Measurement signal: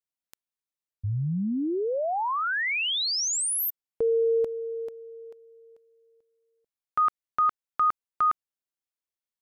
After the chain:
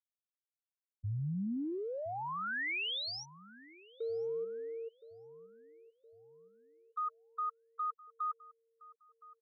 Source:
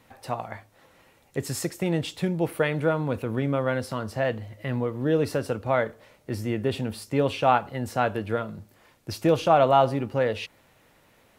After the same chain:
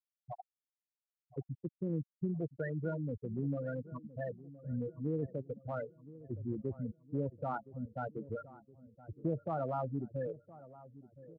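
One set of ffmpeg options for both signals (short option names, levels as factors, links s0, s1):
-filter_complex "[0:a]lowpass=4600,afftfilt=real='re*gte(hypot(re,im),0.2)':imag='im*gte(hypot(re,im),0.2)':win_size=1024:overlap=0.75,acrossover=split=270|1800[s0][s1][s2];[s1]acompressor=threshold=0.0251:ratio=2.5:attack=0.26:release=44:knee=2.83:detection=peak[s3];[s0][s3][s2]amix=inputs=3:normalize=0,asplit=2[s4][s5];[s5]adelay=1017,lowpass=f=1100:p=1,volume=0.141,asplit=2[s6][s7];[s7]adelay=1017,lowpass=f=1100:p=1,volume=0.53,asplit=2[s8][s9];[s9]adelay=1017,lowpass=f=1100:p=1,volume=0.53,asplit=2[s10][s11];[s11]adelay=1017,lowpass=f=1100:p=1,volume=0.53,asplit=2[s12][s13];[s13]adelay=1017,lowpass=f=1100:p=1,volume=0.53[s14];[s6][s8][s10][s12][s14]amix=inputs=5:normalize=0[s15];[s4][s15]amix=inputs=2:normalize=0,volume=0.398"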